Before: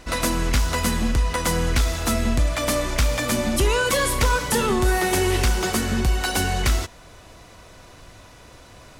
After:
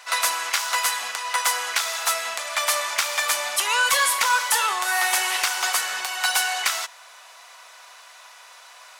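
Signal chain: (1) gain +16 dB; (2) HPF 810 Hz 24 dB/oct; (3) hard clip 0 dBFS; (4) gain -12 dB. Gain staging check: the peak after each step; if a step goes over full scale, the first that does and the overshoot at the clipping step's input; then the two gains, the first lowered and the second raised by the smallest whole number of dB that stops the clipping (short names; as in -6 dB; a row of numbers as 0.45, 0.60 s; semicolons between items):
+5.5, +6.5, 0.0, -12.0 dBFS; step 1, 6.5 dB; step 1 +9 dB, step 4 -5 dB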